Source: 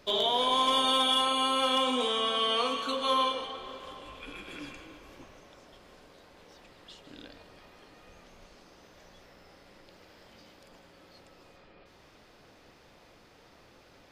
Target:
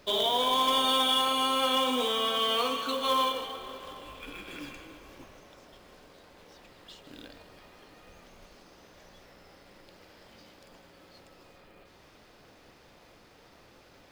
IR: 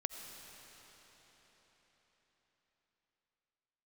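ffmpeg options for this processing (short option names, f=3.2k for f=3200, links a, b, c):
-af "aeval=exprs='0.15*(cos(1*acos(clip(val(0)/0.15,-1,1)))-cos(1*PI/2))+0.00266*(cos(5*acos(clip(val(0)/0.15,-1,1)))-cos(5*PI/2))':c=same,acrusher=bits=4:mode=log:mix=0:aa=0.000001"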